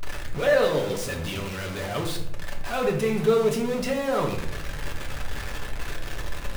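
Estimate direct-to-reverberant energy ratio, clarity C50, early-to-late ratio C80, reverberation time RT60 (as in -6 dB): 0.0 dB, 7.0 dB, 10.0 dB, 0.80 s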